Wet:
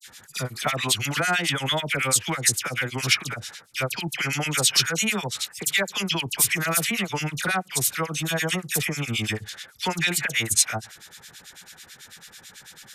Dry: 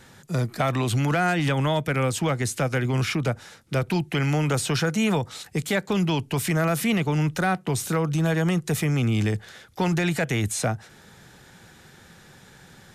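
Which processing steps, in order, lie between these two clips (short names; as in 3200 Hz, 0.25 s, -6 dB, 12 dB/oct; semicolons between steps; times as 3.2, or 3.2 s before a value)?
tilt shelf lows -9.5 dB, about 1200 Hz; dispersion lows, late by 67 ms, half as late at 2000 Hz; harmonic tremolo 9.1 Hz, depth 100%, crossover 1500 Hz; gain +5.5 dB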